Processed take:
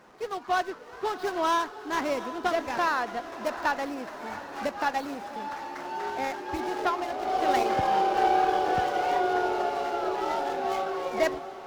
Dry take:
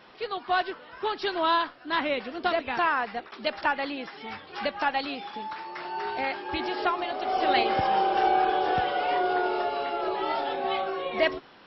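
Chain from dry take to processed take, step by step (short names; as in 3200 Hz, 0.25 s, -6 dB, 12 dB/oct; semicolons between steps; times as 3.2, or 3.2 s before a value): median filter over 15 samples; diffused feedback echo 0.701 s, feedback 57%, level -12.5 dB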